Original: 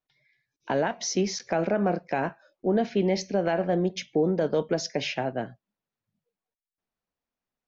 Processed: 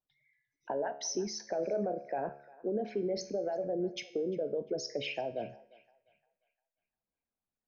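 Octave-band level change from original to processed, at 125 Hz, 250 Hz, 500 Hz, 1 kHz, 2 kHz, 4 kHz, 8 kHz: -15.0 dB, -11.0 dB, -7.0 dB, -9.5 dB, -12.0 dB, -7.5 dB, n/a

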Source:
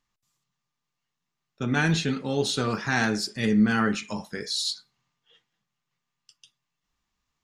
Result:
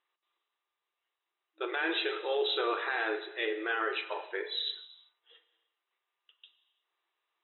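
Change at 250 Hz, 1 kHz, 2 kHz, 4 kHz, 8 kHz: -17.0 dB, -4.0 dB, -4.5 dB, -4.0 dB, under -40 dB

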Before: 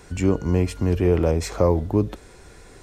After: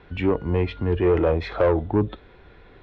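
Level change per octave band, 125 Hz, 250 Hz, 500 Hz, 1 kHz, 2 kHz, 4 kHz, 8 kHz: -3.5 dB, -2.0 dB, +1.0 dB, +2.0 dB, +3.5 dB, -1.0 dB, under -25 dB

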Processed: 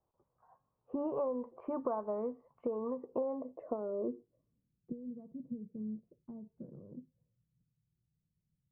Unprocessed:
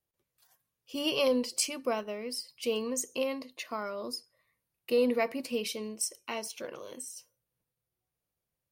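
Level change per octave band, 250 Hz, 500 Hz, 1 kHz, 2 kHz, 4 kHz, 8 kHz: -4.5 dB, -6.0 dB, -5.0 dB, under -30 dB, under -40 dB, under -40 dB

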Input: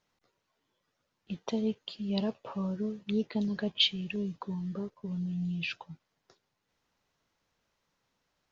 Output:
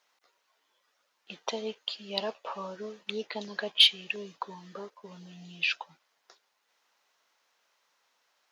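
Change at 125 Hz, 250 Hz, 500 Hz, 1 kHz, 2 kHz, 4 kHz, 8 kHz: -14.5 dB, -13.0 dB, +0.5 dB, +6.5 dB, +7.5 dB, +6.5 dB, n/a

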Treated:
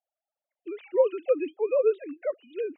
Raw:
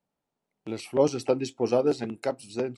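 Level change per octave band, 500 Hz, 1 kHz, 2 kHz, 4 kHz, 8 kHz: +1.0 dB, -7.0 dB, -3.5 dB, under -15 dB, under -35 dB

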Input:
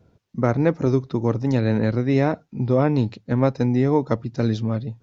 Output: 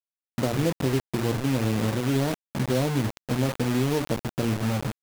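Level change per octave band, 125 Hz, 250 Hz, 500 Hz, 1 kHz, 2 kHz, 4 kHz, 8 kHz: -4.5 dB, -5.0 dB, -6.0 dB, -4.5 dB, -0.5 dB, +7.0 dB, n/a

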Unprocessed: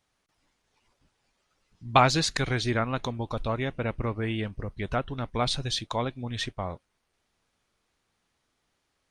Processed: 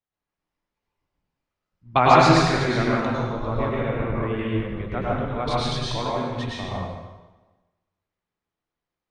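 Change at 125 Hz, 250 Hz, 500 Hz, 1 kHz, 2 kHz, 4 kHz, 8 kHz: +5.0, +7.5, +7.5, +7.5, +4.5, +1.0, -1.5 dB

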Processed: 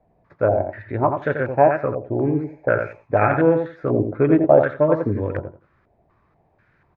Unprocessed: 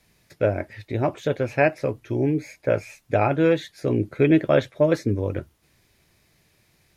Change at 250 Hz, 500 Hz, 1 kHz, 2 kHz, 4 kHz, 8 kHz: +2.0 dB, +4.0 dB, +7.0 dB, +2.5 dB, under -15 dB, n/a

